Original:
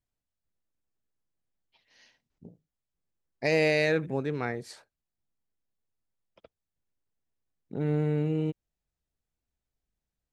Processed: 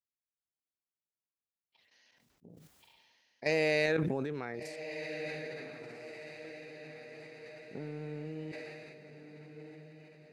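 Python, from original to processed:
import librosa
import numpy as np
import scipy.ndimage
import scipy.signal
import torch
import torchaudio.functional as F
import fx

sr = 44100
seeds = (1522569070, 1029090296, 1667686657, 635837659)

y = fx.highpass(x, sr, hz=190.0, slope=6)
y = fx.level_steps(y, sr, step_db=13)
y = fx.echo_diffused(y, sr, ms=1463, feedback_pct=52, wet_db=-10.0)
y = fx.sustainer(y, sr, db_per_s=24.0)
y = y * librosa.db_to_amplitude(-2.5)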